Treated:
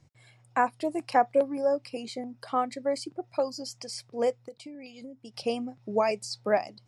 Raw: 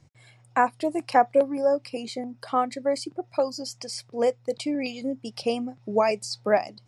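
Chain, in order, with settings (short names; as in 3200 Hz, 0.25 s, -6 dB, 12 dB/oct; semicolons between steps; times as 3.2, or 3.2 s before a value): 4.4–5.34 compressor 12:1, threshold -37 dBFS, peak gain reduction 15.5 dB; gain -3.5 dB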